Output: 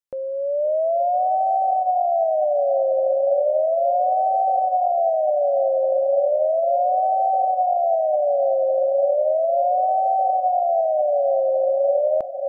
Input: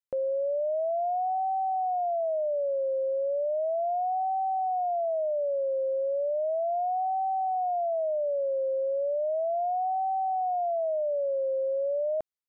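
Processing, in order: AGC gain up to 8 dB; diffused feedback echo 0.585 s, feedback 58%, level -8.5 dB

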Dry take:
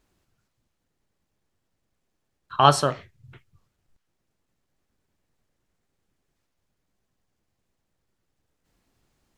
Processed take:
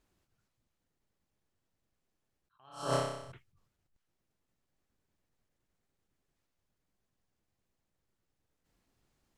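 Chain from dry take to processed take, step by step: 2.64–3.32 flutter echo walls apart 5.3 m, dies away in 0.83 s; attack slew limiter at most 120 dB/s; gain -6 dB

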